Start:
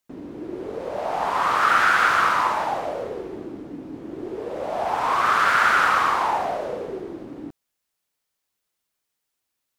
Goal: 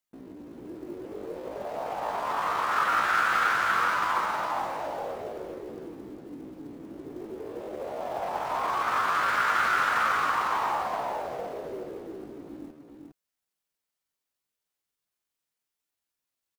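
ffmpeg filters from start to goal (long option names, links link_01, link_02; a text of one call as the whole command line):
ffmpeg -i in.wav -af "acrusher=bits=7:mode=log:mix=0:aa=0.000001,atempo=0.59,aecho=1:1:407:0.596,volume=-7.5dB" out.wav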